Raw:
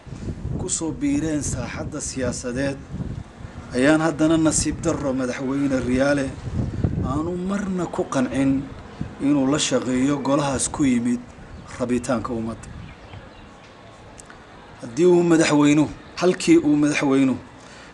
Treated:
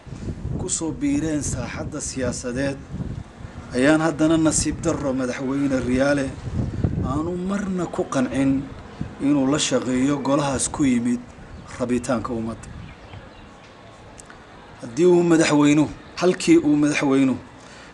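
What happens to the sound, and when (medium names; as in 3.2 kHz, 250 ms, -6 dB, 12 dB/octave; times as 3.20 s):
7.59–8.23 s: Butterworth band-stop 900 Hz, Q 8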